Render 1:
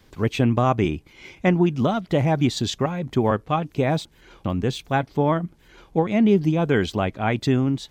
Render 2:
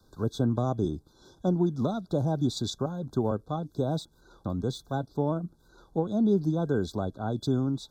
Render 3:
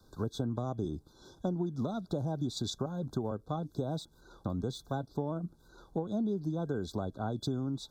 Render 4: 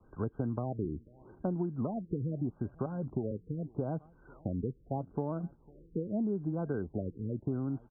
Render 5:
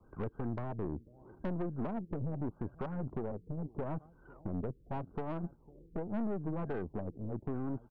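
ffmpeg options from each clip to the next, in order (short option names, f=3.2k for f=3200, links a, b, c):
-filter_complex "[0:a]acrossover=split=250|740|2200[a][b][c][d];[c]acompressor=threshold=-36dB:ratio=16[e];[a][b][e][d]amix=inputs=4:normalize=0,afftfilt=real='re*(1-between(b*sr/4096,1600,3400))':imag='im*(1-between(b*sr/4096,1600,3400))':win_size=4096:overlap=0.75,volume=-6.5dB"
-af "acompressor=threshold=-30dB:ratio=6"
-filter_complex "[0:a]asplit=2[a][b];[b]adelay=501.5,volume=-25dB,highshelf=f=4k:g=-11.3[c];[a][c]amix=inputs=2:normalize=0,afftfilt=real='re*lt(b*sr/1024,480*pow(3300/480,0.5+0.5*sin(2*PI*0.8*pts/sr)))':imag='im*lt(b*sr/1024,480*pow(3300/480,0.5+0.5*sin(2*PI*0.8*pts/sr)))':win_size=1024:overlap=0.75"
-af "aeval=exprs='(tanh(56.2*val(0)+0.65)-tanh(0.65))/56.2':c=same,volume=3dB"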